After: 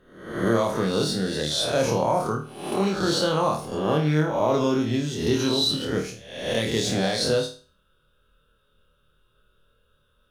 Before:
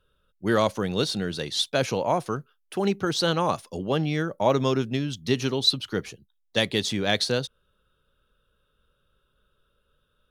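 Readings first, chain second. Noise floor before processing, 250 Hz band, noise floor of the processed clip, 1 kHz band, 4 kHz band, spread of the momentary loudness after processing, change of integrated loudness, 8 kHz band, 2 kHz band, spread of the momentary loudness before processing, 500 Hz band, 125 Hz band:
-71 dBFS, +3.0 dB, -66 dBFS, +2.0 dB, 0.0 dB, 7 LU, +1.5 dB, +3.5 dB, -0.5 dB, 9 LU, +2.5 dB, +2.5 dB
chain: spectral swells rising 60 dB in 0.70 s; limiter -12 dBFS, peak gain reduction 6.5 dB; dynamic EQ 2700 Hz, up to -6 dB, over -40 dBFS, Q 0.84; flutter echo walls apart 4.5 m, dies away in 0.37 s

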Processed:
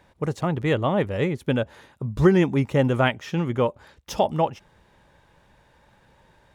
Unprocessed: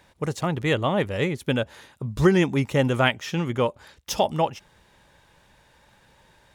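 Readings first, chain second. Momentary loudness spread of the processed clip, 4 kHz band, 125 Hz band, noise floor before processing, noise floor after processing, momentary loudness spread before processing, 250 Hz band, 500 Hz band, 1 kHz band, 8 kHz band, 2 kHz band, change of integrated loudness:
10 LU, -4.5 dB, +1.5 dB, -60 dBFS, -60 dBFS, 11 LU, +1.5 dB, +1.0 dB, 0.0 dB, -6.5 dB, -2.5 dB, +0.5 dB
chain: high shelf 2200 Hz -9 dB; gain +1.5 dB

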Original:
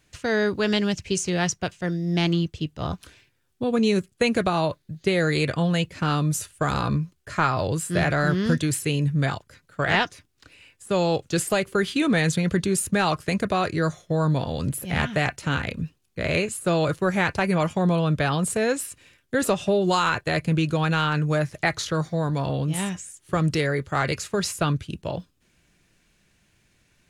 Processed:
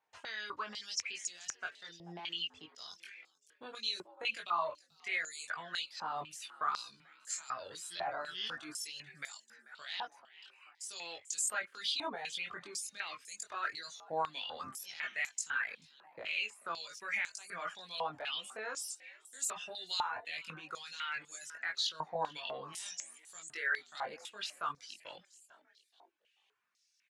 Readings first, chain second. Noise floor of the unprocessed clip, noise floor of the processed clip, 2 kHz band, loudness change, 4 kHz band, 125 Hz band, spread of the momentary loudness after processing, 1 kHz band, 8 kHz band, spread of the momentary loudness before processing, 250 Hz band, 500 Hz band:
-67 dBFS, -75 dBFS, -11.5 dB, -15.0 dB, -7.5 dB, -38.0 dB, 14 LU, -12.5 dB, -8.5 dB, 7 LU, -33.5 dB, -22.0 dB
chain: gate -58 dBFS, range -9 dB; reverb removal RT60 1.3 s; tilt +2 dB/oct; in parallel at +2 dB: negative-ratio compressor -31 dBFS, ratio -1; on the sum: limiter -15 dBFS, peak gain reduction 10.5 dB; chorus voices 6, 0.18 Hz, delay 21 ms, depth 2.6 ms; on a send: frequency-shifting echo 0.437 s, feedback 46%, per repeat +82 Hz, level -20.5 dB; on the sum: stepped band-pass 4 Hz 860–7200 Hz

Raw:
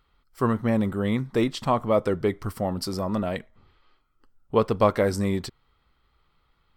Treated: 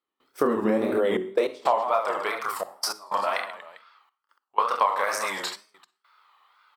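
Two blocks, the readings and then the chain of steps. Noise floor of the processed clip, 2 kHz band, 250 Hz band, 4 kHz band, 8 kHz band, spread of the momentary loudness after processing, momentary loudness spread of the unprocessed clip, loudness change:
under -85 dBFS, +5.0 dB, -6.0 dB, +3.0 dB, +6.0 dB, 9 LU, 8 LU, -0.5 dB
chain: high-pass sweep 330 Hz -> 1000 Hz, 0.82–2.07; reverse bouncing-ball echo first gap 30 ms, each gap 1.5×, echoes 5; step gate "..xxxxxxxxxx..x" 154 bpm -24 dB; notches 50/100/150/200/250/300/350/400 Hz; Schroeder reverb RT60 0.43 s, DRR 16.5 dB; compressor 5:1, threshold -24 dBFS, peak gain reduction 12 dB; wow and flutter 130 cents; gain +4.5 dB

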